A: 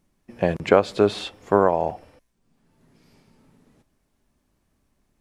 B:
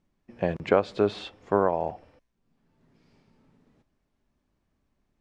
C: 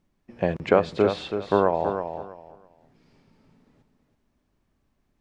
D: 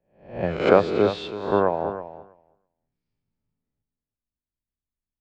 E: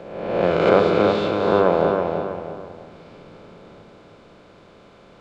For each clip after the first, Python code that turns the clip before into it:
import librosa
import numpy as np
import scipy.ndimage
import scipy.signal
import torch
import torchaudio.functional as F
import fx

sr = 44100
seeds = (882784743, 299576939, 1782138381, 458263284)

y1 = fx.air_absorb(x, sr, metres=89.0)
y1 = F.gain(torch.from_numpy(y1), -5.0).numpy()
y2 = fx.echo_feedback(y1, sr, ms=327, feedback_pct=22, wet_db=-8.0)
y2 = F.gain(torch.from_numpy(y2), 2.5).numpy()
y3 = fx.spec_swells(y2, sr, rise_s=0.77)
y3 = fx.air_absorb(y3, sr, metres=59.0)
y3 = fx.band_widen(y3, sr, depth_pct=70)
y3 = F.gain(torch.from_numpy(y3), -2.5).numpy()
y4 = fx.bin_compress(y3, sr, power=0.4)
y4 = fx.room_shoebox(y4, sr, seeds[0], volume_m3=1800.0, walls='mixed', distance_m=0.76)
y4 = F.gain(torch.from_numpy(y4), -2.0).numpy()